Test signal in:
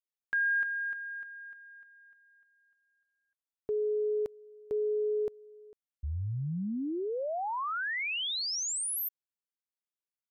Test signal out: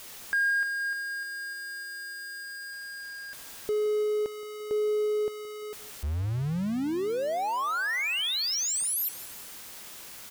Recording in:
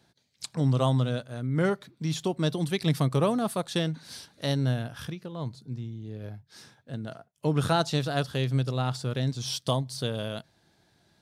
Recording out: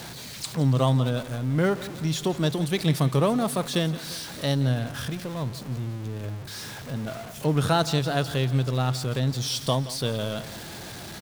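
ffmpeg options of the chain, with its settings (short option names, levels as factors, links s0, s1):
-af "aeval=exprs='val(0)+0.5*0.0178*sgn(val(0))':c=same,aecho=1:1:172|344|516|688|860:0.15|0.0853|0.0486|0.0277|0.0158,aeval=exprs='0.316*(cos(1*acos(clip(val(0)/0.316,-1,1)))-cos(1*PI/2))+0.00224*(cos(4*acos(clip(val(0)/0.316,-1,1)))-cos(4*PI/2))':c=same,volume=1.19"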